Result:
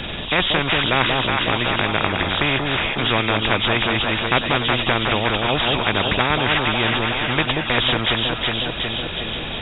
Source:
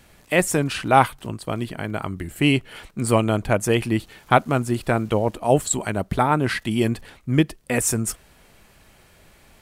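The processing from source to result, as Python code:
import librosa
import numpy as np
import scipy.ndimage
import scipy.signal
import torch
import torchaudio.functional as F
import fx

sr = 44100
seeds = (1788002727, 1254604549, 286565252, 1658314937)

y = fx.freq_compress(x, sr, knee_hz=2400.0, ratio=4.0)
y = fx.low_shelf(y, sr, hz=170.0, db=9.5)
y = fx.echo_alternate(y, sr, ms=183, hz=830.0, feedback_pct=63, wet_db=-6)
y = fx.spectral_comp(y, sr, ratio=4.0)
y = y * librosa.db_to_amplitude(-1.0)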